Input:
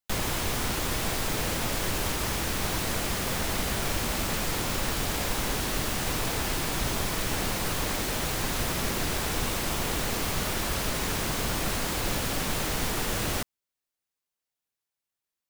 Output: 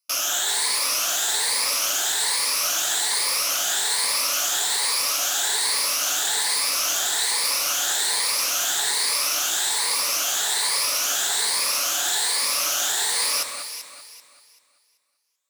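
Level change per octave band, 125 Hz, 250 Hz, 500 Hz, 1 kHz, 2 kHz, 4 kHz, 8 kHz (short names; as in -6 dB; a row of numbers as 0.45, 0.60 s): under -25 dB, -15.5 dB, -4.0 dB, +3.0 dB, +4.5 dB, +10.5 dB, +12.5 dB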